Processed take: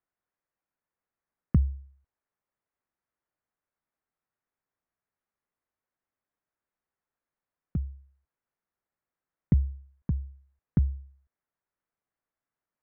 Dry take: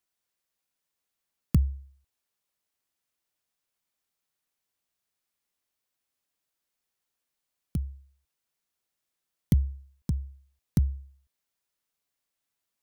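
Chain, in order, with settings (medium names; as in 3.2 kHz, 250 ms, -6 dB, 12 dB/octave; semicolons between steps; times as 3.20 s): inverse Chebyshev low-pass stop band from 7.7 kHz, stop band 70 dB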